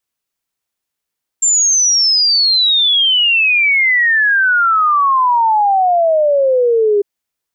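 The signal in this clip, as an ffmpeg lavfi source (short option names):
-f lavfi -i "aevalsrc='0.355*clip(min(t,5.6-t)/0.01,0,1)*sin(2*PI*7400*5.6/log(400/7400)*(exp(log(400/7400)*t/5.6)-1))':d=5.6:s=44100"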